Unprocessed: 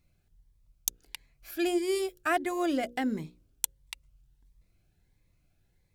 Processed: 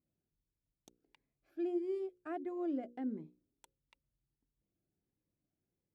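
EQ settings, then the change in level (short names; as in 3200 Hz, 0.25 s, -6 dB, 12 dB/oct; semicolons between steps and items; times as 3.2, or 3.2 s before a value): band-pass 290 Hz, Q 1.4; low shelf 320 Hz -4 dB; -4.5 dB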